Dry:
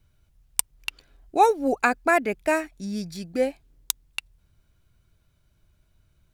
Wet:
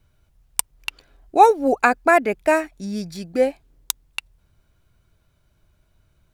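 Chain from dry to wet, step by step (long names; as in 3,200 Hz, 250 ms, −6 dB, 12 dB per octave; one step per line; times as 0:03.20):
parametric band 740 Hz +4.5 dB 2.5 octaves
level +1.5 dB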